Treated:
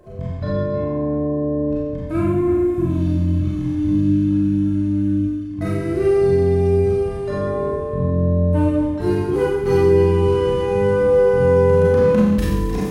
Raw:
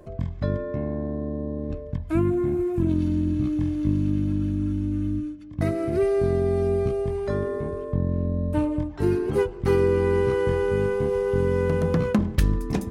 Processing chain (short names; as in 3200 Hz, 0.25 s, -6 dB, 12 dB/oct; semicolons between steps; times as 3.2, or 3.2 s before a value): reverse delay 0.193 s, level -13.5 dB; Schroeder reverb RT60 0.95 s, combs from 30 ms, DRR -5 dB; harmonic-percussive split percussive -8 dB